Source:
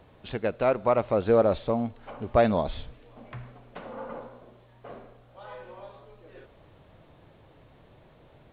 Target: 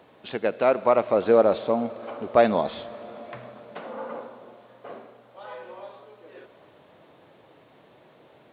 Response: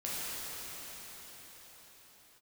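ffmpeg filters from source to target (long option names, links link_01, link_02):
-filter_complex "[0:a]highpass=230,asplit=2[link_01][link_02];[1:a]atrim=start_sample=2205,adelay=74[link_03];[link_02][link_03]afir=irnorm=-1:irlink=0,volume=-21dB[link_04];[link_01][link_04]amix=inputs=2:normalize=0,volume=3.5dB"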